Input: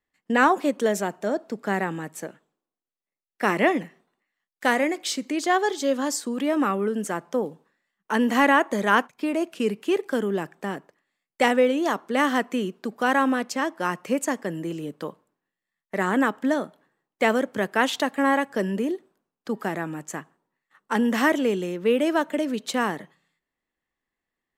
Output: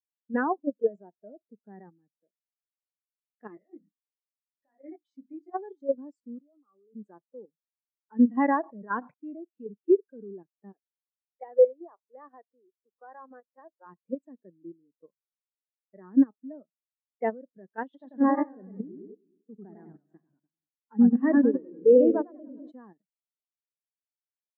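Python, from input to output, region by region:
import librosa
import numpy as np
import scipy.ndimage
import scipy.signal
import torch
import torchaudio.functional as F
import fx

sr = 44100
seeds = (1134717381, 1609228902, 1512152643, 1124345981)

y = fx.chain(x, sr, fx.hum_notches(base_hz=50, count=6),
    fx.over_compress(threshold_db=-26.0, ratio=-1.0),
    fx.detune_double(cents=51), at=(3.55, 5.54))
y = fx.chain(y, sr, fx.ellip_bandpass(low_hz=150.0, high_hz=1300.0, order=3, stop_db=40),
    fx.low_shelf(hz=380.0, db=-8.0),
    fx.level_steps(step_db=18), at=(6.4, 6.95))
y = fx.chain(y, sr, fx.air_absorb(metres=150.0),
    fx.sustainer(db_per_s=65.0), at=(8.51, 9.14))
y = fx.chain(y, sr, fx.highpass(hz=450.0, slope=12),
    fx.high_shelf(hz=2900.0, db=-11.5), at=(10.73, 13.86))
y = fx.chain(y, sr, fx.echo_single(ms=333, db=-17.0),
    fx.echo_warbled(ms=98, feedback_pct=64, rate_hz=2.8, cents=179, wet_db=-3), at=(17.84, 22.72))
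y = fx.high_shelf(y, sr, hz=3500.0, db=-5.0)
y = fx.level_steps(y, sr, step_db=10)
y = fx.spectral_expand(y, sr, expansion=2.5)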